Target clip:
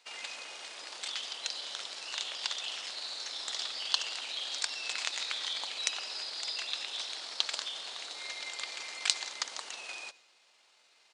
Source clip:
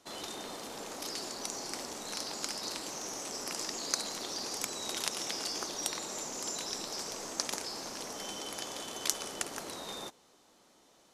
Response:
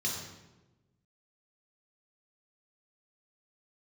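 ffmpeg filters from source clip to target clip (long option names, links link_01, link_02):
-filter_complex "[0:a]highpass=1500,asetrate=30296,aresample=44100,atempo=1.45565,asplit=2[link_01][link_02];[1:a]atrim=start_sample=2205,adelay=81[link_03];[link_02][link_03]afir=irnorm=-1:irlink=0,volume=-26dB[link_04];[link_01][link_04]amix=inputs=2:normalize=0,volume=2.5dB"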